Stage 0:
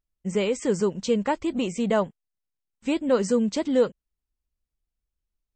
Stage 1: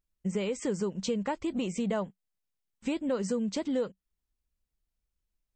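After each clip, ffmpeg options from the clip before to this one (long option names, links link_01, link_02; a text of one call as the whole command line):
ffmpeg -i in.wav -af "equalizer=frequency=190:width_type=o:width=0.22:gain=4.5,acompressor=threshold=-30dB:ratio=3" out.wav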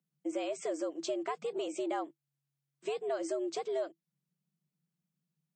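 ffmpeg -i in.wav -af "afreqshift=140,volume=-4.5dB" out.wav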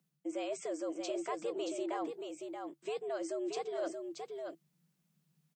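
ffmpeg -i in.wav -af "areverse,acompressor=threshold=-46dB:ratio=4,areverse,aecho=1:1:628:0.531,volume=8.5dB" out.wav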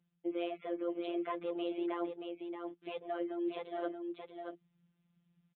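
ffmpeg -i in.wav -af "afftfilt=real='hypot(re,im)*cos(PI*b)':imag='0':win_size=1024:overlap=0.75,aresample=8000,aresample=44100,volume=3.5dB" out.wav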